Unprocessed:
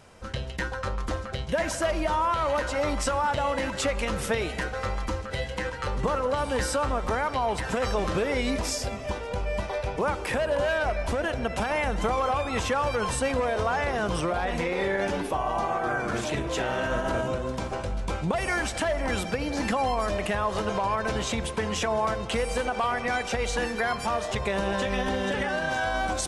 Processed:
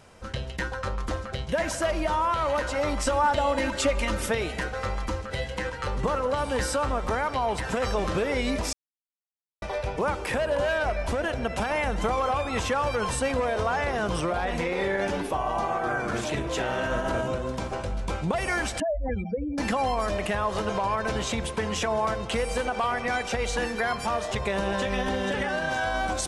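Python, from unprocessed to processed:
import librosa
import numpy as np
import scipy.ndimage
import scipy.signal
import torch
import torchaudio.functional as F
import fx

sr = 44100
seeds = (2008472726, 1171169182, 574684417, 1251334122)

y = fx.comb(x, sr, ms=3.3, depth=0.65, at=(3.06, 4.29))
y = fx.spec_expand(y, sr, power=3.4, at=(18.8, 19.58))
y = fx.edit(y, sr, fx.silence(start_s=8.73, length_s=0.89), tone=tone)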